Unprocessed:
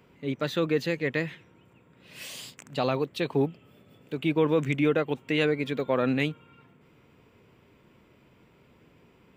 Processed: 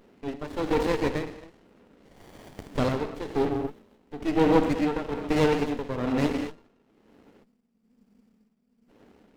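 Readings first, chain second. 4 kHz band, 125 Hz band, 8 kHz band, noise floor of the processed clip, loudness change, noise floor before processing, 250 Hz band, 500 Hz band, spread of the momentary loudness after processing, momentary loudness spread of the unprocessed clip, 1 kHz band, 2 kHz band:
−3.0 dB, −1.0 dB, can't be measured, −70 dBFS, +0.5 dB, −60 dBFS, +2.0 dB, +0.5 dB, 15 LU, 14 LU, +4.5 dB, −3.5 dB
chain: Butterworth high-pass 200 Hz 48 dB per octave
reverb whose tail is shaped and stops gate 270 ms flat, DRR 4.5 dB
amplitude tremolo 1.1 Hz, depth 69%
gain on a spectral selection 0:07.44–0:08.89, 260–4,400 Hz −20 dB
windowed peak hold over 33 samples
level +5 dB

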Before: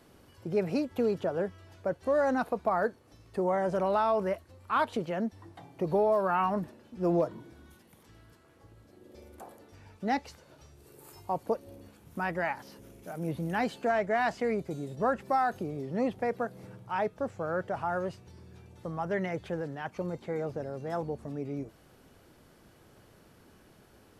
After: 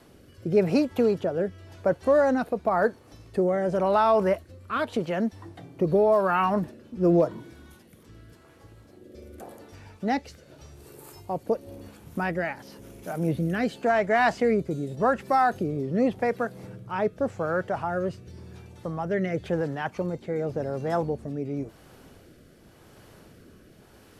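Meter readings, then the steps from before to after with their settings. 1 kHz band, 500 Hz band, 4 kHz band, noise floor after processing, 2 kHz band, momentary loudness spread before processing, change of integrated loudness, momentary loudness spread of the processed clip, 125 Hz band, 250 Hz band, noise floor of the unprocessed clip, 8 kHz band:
+4.0 dB, +6.0 dB, +5.0 dB, −54 dBFS, +5.0 dB, 13 LU, +5.5 dB, 17 LU, +7.0 dB, +6.5 dB, −60 dBFS, can't be measured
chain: rotating-speaker cabinet horn 0.9 Hz
level +8 dB

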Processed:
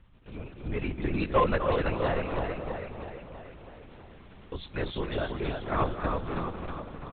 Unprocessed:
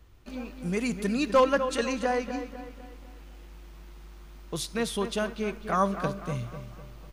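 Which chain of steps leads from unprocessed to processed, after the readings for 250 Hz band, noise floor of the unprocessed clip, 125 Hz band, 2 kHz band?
−3.5 dB, −47 dBFS, +3.0 dB, −2.0 dB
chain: on a send: repeating echo 325 ms, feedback 56%, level −4.5 dB
on the sum: linear-prediction vocoder at 8 kHz whisper
level −3 dB

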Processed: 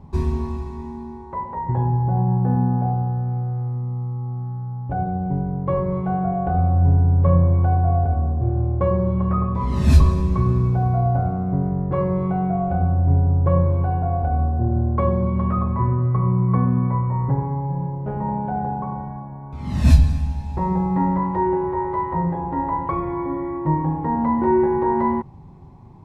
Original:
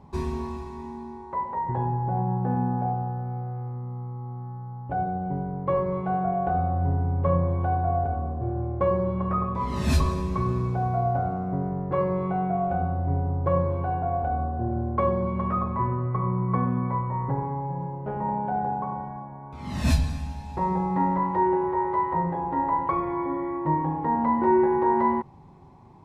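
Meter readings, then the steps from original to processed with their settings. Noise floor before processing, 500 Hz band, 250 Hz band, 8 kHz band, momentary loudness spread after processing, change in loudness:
−40 dBFS, +2.0 dB, +5.5 dB, can't be measured, 11 LU, +5.5 dB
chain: low-shelf EQ 210 Hz +11.5 dB

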